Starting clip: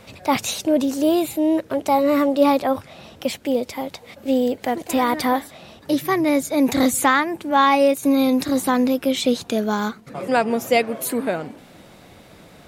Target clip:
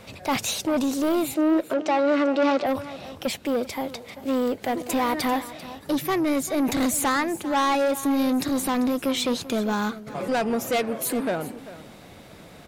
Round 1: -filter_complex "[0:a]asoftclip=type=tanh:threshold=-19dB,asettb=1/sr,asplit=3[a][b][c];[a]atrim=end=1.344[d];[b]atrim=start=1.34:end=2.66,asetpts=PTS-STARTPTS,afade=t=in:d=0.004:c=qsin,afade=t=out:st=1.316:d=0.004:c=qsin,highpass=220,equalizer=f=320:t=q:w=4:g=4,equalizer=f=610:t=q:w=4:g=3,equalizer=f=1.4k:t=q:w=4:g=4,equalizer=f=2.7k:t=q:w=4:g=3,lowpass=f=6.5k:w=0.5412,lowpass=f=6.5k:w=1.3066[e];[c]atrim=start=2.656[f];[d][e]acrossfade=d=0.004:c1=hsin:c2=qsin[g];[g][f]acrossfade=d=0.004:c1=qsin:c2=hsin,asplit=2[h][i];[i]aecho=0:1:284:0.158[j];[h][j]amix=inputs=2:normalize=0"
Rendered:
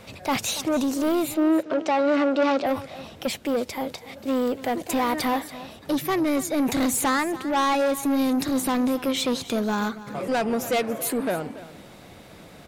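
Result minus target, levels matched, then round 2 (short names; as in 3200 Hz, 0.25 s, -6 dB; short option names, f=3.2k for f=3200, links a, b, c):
echo 0.108 s early
-filter_complex "[0:a]asoftclip=type=tanh:threshold=-19dB,asettb=1/sr,asplit=3[a][b][c];[a]atrim=end=1.344[d];[b]atrim=start=1.34:end=2.66,asetpts=PTS-STARTPTS,afade=t=in:d=0.004:c=qsin,afade=t=out:st=1.316:d=0.004:c=qsin,highpass=220,equalizer=f=320:t=q:w=4:g=4,equalizer=f=610:t=q:w=4:g=3,equalizer=f=1.4k:t=q:w=4:g=4,equalizer=f=2.7k:t=q:w=4:g=3,lowpass=f=6.5k:w=0.5412,lowpass=f=6.5k:w=1.3066[e];[c]atrim=start=2.656[f];[d][e]acrossfade=d=0.004:c1=hsin:c2=qsin[g];[g][f]acrossfade=d=0.004:c1=qsin:c2=hsin,asplit=2[h][i];[i]aecho=0:1:392:0.158[j];[h][j]amix=inputs=2:normalize=0"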